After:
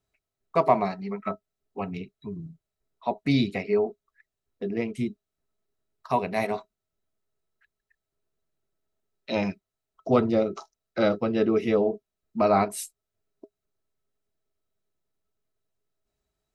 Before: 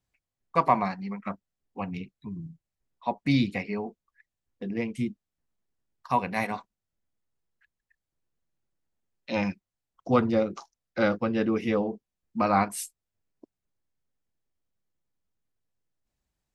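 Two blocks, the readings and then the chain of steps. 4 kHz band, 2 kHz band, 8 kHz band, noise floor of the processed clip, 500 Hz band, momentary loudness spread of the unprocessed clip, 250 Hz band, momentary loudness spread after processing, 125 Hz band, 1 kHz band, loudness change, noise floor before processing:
+2.0 dB, −2.0 dB, 0.0 dB, below −85 dBFS, +5.0 dB, 16 LU, +1.0 dB, 16 LU, 0.0 dB, −0.5 dB, +2.0 dB, below −85 dBFS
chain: dynamic equaliser 1,400 Hz, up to −6 dB, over −40 dBFS, Q 1.8
hollow resonant body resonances 410/640/1,300/3,900 Hz, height 14 dB, ringing for 85 ms

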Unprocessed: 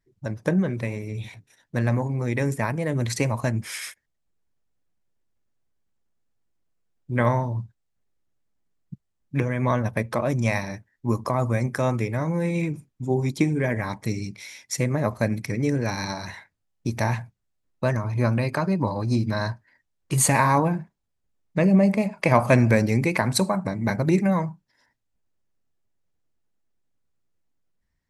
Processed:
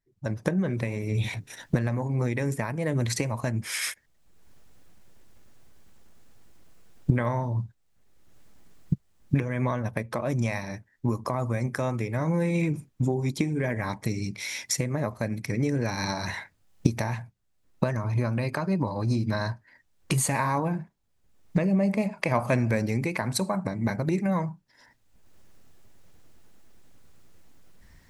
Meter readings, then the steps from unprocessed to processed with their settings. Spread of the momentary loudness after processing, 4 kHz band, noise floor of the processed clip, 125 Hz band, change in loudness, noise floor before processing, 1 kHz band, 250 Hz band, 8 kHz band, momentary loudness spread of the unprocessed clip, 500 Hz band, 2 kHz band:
8 LU, −1.0 dB, −67 dBFS, −3.0 dB, −4.0 dB, −76 dBFS, −5.5 dB, −3.5 dB, −3.5 dB, 13 LU, −4.5 dB, −4.0 dB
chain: camcorder AGC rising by 27 dB per second
level −7 dB

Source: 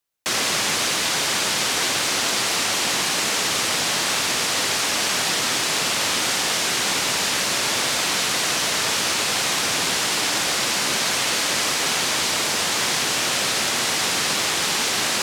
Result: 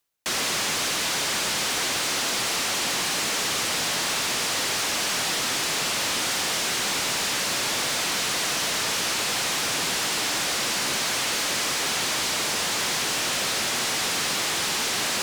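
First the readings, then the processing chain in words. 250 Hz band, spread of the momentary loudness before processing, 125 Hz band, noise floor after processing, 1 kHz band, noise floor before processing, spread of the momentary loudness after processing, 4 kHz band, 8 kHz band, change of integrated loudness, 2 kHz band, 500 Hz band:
−4.0 dB, 0 LU, −3.5 dB, −26 dBFS, −4.0 dB, −23 dBFS, 0 LU, −4.0 dB, −3.5 dB, −3.5 dB, −4.0 dB, −4.0 dB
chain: reversed playback
upward compression, threshold −27 dBFS
reversed playback
soft clipping −21.5 dBFS, distortion −12 dB

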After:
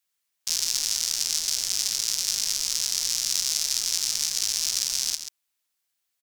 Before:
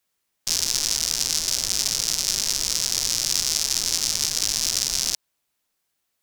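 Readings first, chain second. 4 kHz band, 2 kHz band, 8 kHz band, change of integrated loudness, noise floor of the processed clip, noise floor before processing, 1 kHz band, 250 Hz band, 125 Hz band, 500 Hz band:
−2.5 dB, −4.5 dB, −2.5 dB, −2.5 dB, −79 dBFS, −76 dBFS, −8.0 dB, below −10 dB, below −10 dB, below −10 dB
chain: tilt shelving filter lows −5.5 dB, about 1,100 Hz
on a send: single-tap delay 135 ms −9.5 dB
on the sum: level −8 dB

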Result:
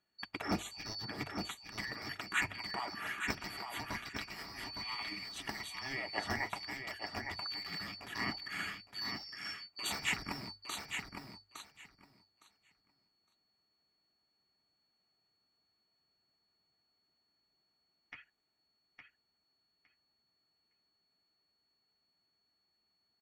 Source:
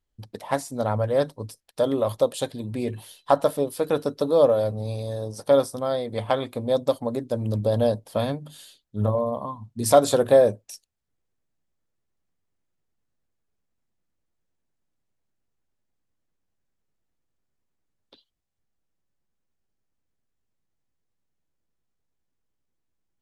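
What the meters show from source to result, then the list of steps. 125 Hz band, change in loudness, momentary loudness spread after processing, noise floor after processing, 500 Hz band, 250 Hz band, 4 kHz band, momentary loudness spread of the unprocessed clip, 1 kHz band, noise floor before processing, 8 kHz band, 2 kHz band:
−20.0 dB, −16.0 dB, 13 LU, −81 dBFS, −30.0 dB, −16.5 dB, −1.5 dB, 14 LU, −14.0 dB, −78 dBFS, −11.0 dB, +3.0 dB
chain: band-splitting scrambler in four parts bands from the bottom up 2341
hard clipping −18 dBFS, distortion −8 dB
mains-hum notches 50/100 Hz
downward compressor, threshold −29 dBFS, peak gain reduction 9 dB
notch comb filter 520 Hz
dynamic equaliser 1,200 Hz, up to +6 dB, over −57 dBFS, Q 0.91
moving average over 9 samples
on a send: repeating echo 861 ms, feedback 16%, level −6 dB
on the sum: level +10.5 dB

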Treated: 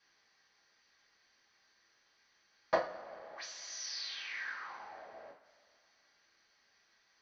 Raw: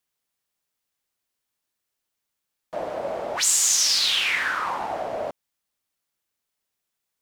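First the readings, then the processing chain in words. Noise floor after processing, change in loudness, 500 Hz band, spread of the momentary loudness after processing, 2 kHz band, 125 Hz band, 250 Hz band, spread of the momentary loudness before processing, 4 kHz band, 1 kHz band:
−73 dBFS, −19.0 dB, −10.0 dB, 16 LU, −15.5 dB, −15.0 dB, −12.5 dB, 16 LU, −20.5 dB, −13.5 dB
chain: low-shelf EQ 130 Hz −6.5 dB
gate with flip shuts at −24 dBFS, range −35 dB
Chebyshev low-pass with heavy ripple 6,200 Hz, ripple 9 dB
coupled-rooms reverb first 0.31 s, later 2.3 s, from −20 dB, DRR −7 dB
level +12.5 dB

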